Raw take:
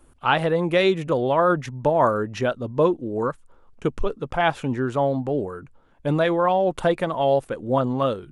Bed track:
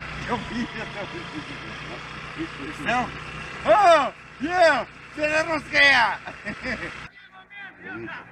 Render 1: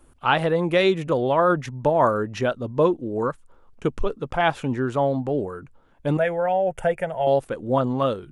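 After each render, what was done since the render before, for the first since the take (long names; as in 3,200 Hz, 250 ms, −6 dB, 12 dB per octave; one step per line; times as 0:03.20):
0:06.17–0:07.27: phaser with its sweep stopped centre 1,100 Hz, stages 6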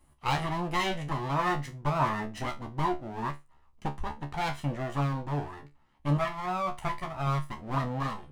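lower of the sound and its delayed copy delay 1 ms
tuned comb filter 72 Hz, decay 0.22 s, harmonics all, mix 90%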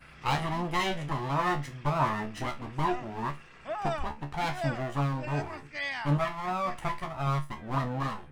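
mix in bed track −18.5 dB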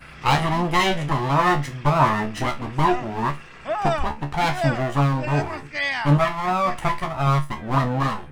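level +9.5 dB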